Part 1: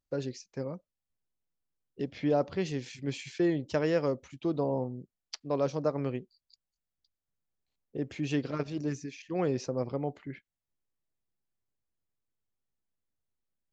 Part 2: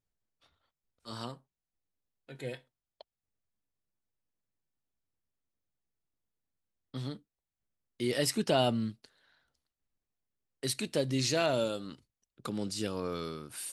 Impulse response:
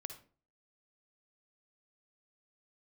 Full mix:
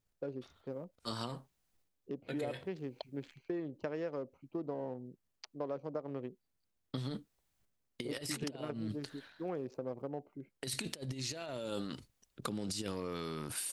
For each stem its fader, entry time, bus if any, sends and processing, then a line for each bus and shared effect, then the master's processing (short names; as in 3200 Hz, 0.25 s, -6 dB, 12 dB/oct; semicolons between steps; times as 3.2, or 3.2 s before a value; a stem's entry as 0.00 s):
-2.5 dB, 0.10 s, no send, Wiener smoothing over 25 samples; HPF 280 Hz 6 dB/oct; high shelf 3100 Hz -10.5 dB
-1.5 dB, 0.00 s, no send, transient shaper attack +6 dB, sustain +10 dB; negative-ratio compressor -33 dBFS, ratio -0.5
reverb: off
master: compressor 6:1, threshold -35 dBFS, peak gain reduction 10 dB